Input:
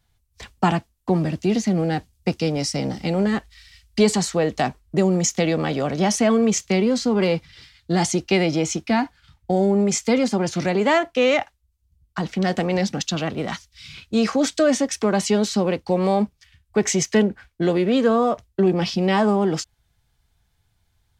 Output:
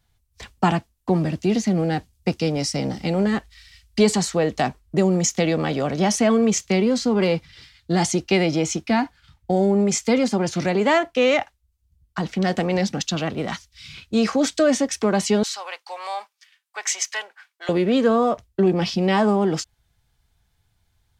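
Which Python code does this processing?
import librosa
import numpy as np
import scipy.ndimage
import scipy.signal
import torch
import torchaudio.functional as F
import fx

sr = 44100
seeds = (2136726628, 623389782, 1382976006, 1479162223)

y = fx.highpass(x, sr, hz=860.0, slope=24, at=(15.43, 17.69))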